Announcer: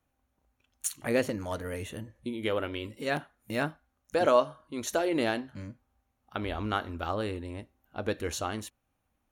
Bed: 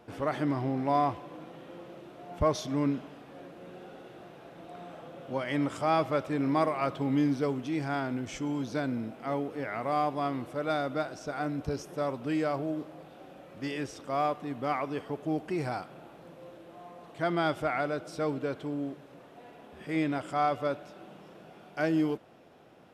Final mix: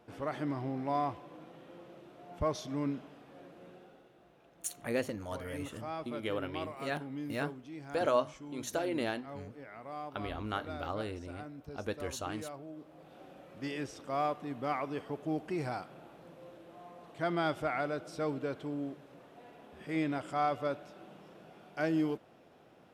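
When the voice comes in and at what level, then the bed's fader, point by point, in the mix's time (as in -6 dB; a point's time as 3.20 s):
3.80 s, -6.0 dB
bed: 3.65 s -6 dB
4.12 s -14 dB
12.72 s -14 dB
13.16 s -3.5 dB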